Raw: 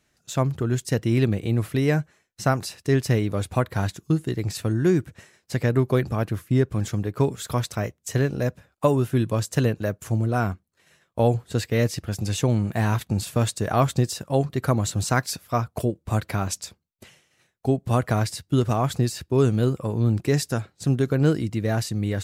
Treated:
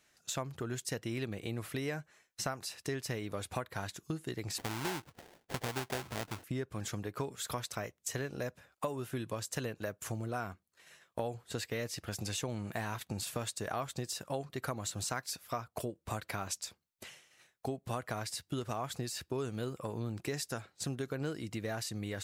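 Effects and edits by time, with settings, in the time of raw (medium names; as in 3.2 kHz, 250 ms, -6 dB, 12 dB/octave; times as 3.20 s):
4.58–6.44 s: sample-rate reducer 1.2 kHz, jitter 20%
whole clip: bass shelf 360 Hz -11.5 dB; compression 4:1, threshold -37 dBFS; trim +1 dB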